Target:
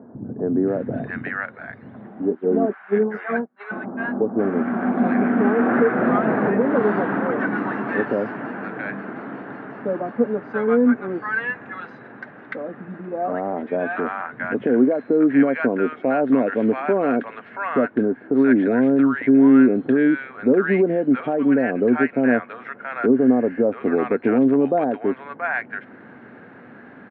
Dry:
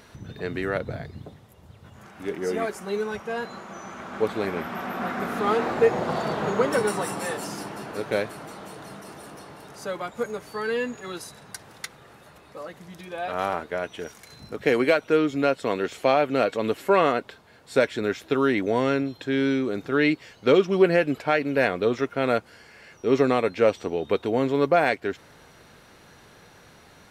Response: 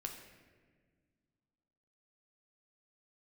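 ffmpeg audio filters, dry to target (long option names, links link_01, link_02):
-filter_complex "[0:a]asplit=3[link_01][link_02][link_03];[link_01]afade=type=out:start_time=2.29:duration=0.02[link_04];[link_02]agate=range=-42dB:threshold=-28dB:ratio=16:detection=peak,afade=type=in:start_time=2.29:duration=0.02,afade=type=out:start_time=3.7:duration=0.02[link_05];[link_03]afade=type=in:start_time=3.7:duration=0.02[link_06];[link_04][link_05][link_06]amix=inputs=3:normalize=0,lowshelf=frequency=330:gain=10,alimiter=limit=-14.5dB:level=0:latency=1:release=220,highpass=frequency=150:width=0.5412,highpass=frequency=150:width=1.3066,equalizer=frequency=160:width_type=q:width=4:gain=-9,equalizer=frequency=250:width_type=q:width=4:gain=8,equalizer=frequency=730:width_type=q:width=4:gain=3,equalizer=frequency=1600:width_type=q:width=4:gain=7,lowpass=frequency=2100:width=0.5412,lowpass=frequency=2100:width=1.3066,acrossover=split=870[link_07][link_08];[link_08]adelay=680[link_09];[link_07][link_09]amix=inputs=2:normalize=0,volume=5dB"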